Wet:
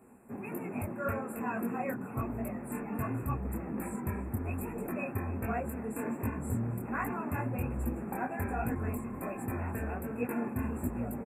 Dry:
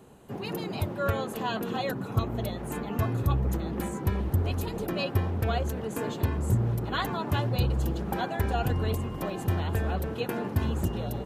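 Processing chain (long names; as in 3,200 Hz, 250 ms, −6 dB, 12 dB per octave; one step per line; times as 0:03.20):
linear-phase brick-wall band-stop 2,700–7,200 Hz
low-shelf EQ 470 Hz −6.5 dB
hollow resonant body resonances 240 Hz, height 13 dB, ringing for 85 ms
on a send: single-tap delay 284 ms −20.5 dB
on the sum: micro pitch shift up and down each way 44 cents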